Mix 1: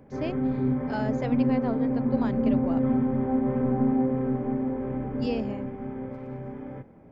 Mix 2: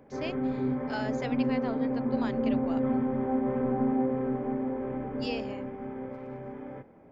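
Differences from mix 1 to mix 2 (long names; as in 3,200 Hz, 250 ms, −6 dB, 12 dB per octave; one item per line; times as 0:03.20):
speech: add tilt shelving filter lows −6.5 dB, about 1,400 Hz
master: add bass and treble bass −8 dB, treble −2 dB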